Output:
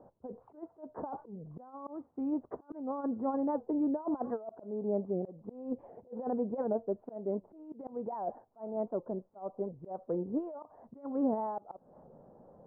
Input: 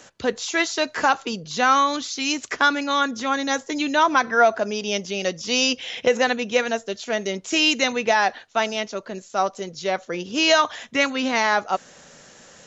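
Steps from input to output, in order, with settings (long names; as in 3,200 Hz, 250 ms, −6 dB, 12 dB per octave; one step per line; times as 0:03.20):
compressor whose output falls as the input rises −22 dBFS, ratio −0.5
Butterworth low-pass 910 Hz 36 dB per octave
volume swells 259 ms
wow of a warped record 78 rpm, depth 160 cents
level −7 dB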